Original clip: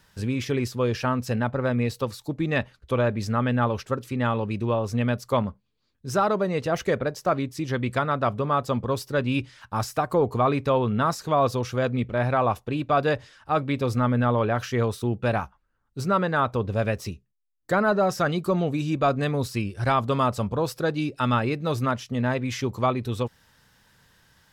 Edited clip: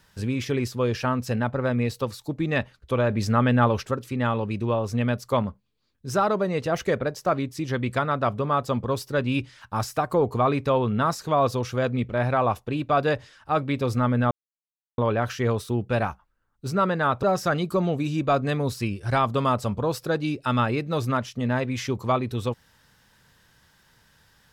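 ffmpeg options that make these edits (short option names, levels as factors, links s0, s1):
-filter_complex "[0:a]asplit=5[s0][s1][s2][s3][s4];[s0]atrim=end=3.102[s5];[s1]atrim=start=3.098:end=3.912,asetpts=PTS-STARTPTS,volume=1.5[s6];[s2]atrim=start=3.908:end=14.31,asetpts=PTS-STARTPTS,afade=t=out:st=10.398:d=0.004:c=hsin,apad=pad_dur=0.67[s7];[s3]atrim=start=14.31:end=16.562,asetpts=PTS-STARTPTS,afade=t=in:d=0.004:c=hsin[s8];[s4]atrim=start=17.968[s9];[s5][s6]acrossfade=d=0.004:c1=hsin:c2=hsin[s10];[s7][s8]concat=n=2:v=0:a=1[s11];[s10][s11]acrossfade=d=0.004:c1=hsin:c2=hsin[s12];[s12][s9]acrossfade=d=0.004:c1=hsin:c2=hsin"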